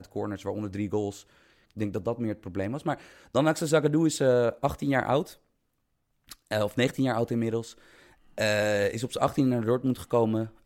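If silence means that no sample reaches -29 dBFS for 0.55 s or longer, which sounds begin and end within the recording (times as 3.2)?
1.79–5.22
6.32–7.61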